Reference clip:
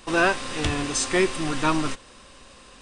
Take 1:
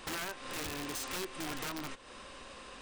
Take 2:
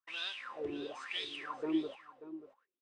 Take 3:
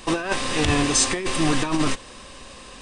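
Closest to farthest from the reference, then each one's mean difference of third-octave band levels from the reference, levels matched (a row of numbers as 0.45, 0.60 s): 3, 1, 2; 4.5, 9.0, 12.0 dB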